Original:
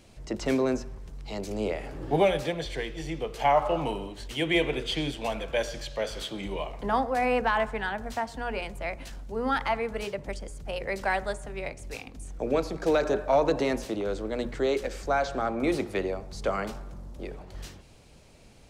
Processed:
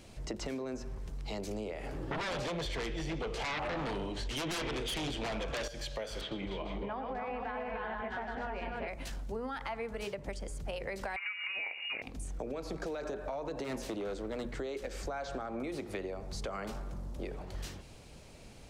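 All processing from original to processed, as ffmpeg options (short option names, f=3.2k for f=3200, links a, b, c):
-filter_complex "[0:a]asettb=1/sr,asplit=3[a][b][c];[a]atrim=end=2.114[d];[b]atrim=start=2.11:end=5.68,asetpts=PTS-STARTPTS,afade=t=in:d=0.004:c=qsin,afade=t=out:st=3.566:d=0.004:c=qsin,lowpass=6.8k,acompressor=threshold=-27dB:ratio=2:attack=3.2:release=140:knee=1:detection=peak,aeval=exprs='0.133*sin(PI/2*3.98*val(0)/0.133)':c=same[e];[c]atrim=start=5.676[f];[d][e]acrossfade=d=0.004:c1=hsin:c2=qsin[g];[g][f]acrossfade=d=0.004:c1=qsin:c2=hsin,asettb=1/sr,asplit=3[h][i][j];[h]atrim=end=6.214[k];[i]atrim=start=6.21:end=8.88,asetpts=PTS-STARTPTS,afade=t=in:d=0.004:c=qsin,afade=t=out:st=2.666:d=0.004:c=qsin,lowpass=2.8k,aecho=1:1:103|259|299|442|460:0.398|0.335|0.708|0.398|0.316,atrim=end_sample=117747[l];[j]atrim=start=8.876[m];[k][l]acrossfade=d=0.004:c1=hsin:c2=qsin[n];[n][m]acrossfade=d=0.004:c1=qsin:c2=hsin,asettb=1/sr,asplit=3[o][p][q];[o]atrim=end=11.164[r];[p]atrim=start=11.16:end=12.02,asetpts=PTS-STARTPTS,afade=t=in:d=0.004:c=qsin,afade=t=out:st=0.856:d=0.004:c=qsin,equalizer=f=740:t=o:w=2.1:g=13.5,acompressor=threshold=-27dB:ratio=3:attack=3.2:release=140:knee=1:detection=peak,lowpass=f=2.5k:t=q:w=0.5098,lowpass=f=2.5k:t=q:w=0.6013,lowpass=f=2.5k:t=q:w=0.9,lowpass=f=2.5k:t=q:w=2.563,afreqshift=-2900[s];[q]atrim=start=12.016[t];[r][s]acrossfade=d=0.004:c1=hsin:c2=qsin[u];[u][t]acrossfade=d=0.004:c1=qsin:c2=hsin,asettb=1/sr,asplit=3[v][w][x];[v]atrim=end=13.644[y];[w]atrim=start=13.64:end=14.44,asetpts=PTS-STARTPTS,afade=t=in:d=0.004:c=qsin,afade=t=out:st=0.796:d=0.004:c=qsin,bandreject=f=50:t=h:w=6,bandreject=f=100:t=h:w=6,bandreject=f=150:t=h:w=6,asoftclip=type=hard:threshold=-26.5dB[z];[x]atrim=start=14.436[aa];[y][z]acrossfade=d=0.004:c1=hsin:c2=qsin[ab];[ab][aa]acrossfade=d=0.004:c1=qsin:c2=hsin,alimiter=limit=-23.5dB:level=0:latency=1:release=130,acompressor=threshold=-37dB:ratio=6,volume=1.5dB"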